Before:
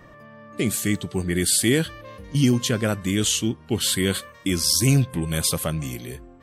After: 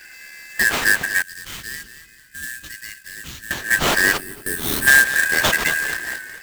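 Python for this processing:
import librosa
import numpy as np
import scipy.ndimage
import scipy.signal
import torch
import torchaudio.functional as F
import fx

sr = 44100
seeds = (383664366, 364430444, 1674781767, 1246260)

y = fx.band_shuffle(x, sr, order='3142')
y = fx.echo_feedback(y, sr, ms=224, feedback_pct=40, wet_db=-11.5)
y = fx.quant_float(y, sr, bits=2)
y = fx.peak_eq(y, sr, hz=6000.0, db=-5.5, octaves=0.39)
y = fx.sample_hold(y, sr, seeds[0], rate_hz=9900.0, jitter_pct=20)
y = fx.tone_stack(y, sr, knobs='6-0-2', at=(1.22, 3.51))
y = fx.spec_box(y, sr, start_s=4.17, length_s=0.7, low_hz=450.0, high_hz=8000.0, gain_db=-12)
y = y * 10.0 ** (5.5 / 20.0)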